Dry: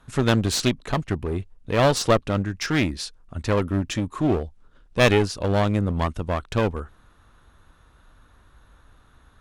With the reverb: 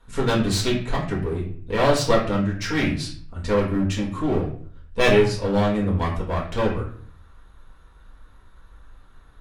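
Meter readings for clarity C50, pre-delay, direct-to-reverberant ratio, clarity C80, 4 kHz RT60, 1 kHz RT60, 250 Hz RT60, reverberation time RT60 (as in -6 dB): 6.5 dB, 4 ms, -5.0 dB, 10.5 dB, 0.40 s, 0.50 s, 0.70 s, 0.55 s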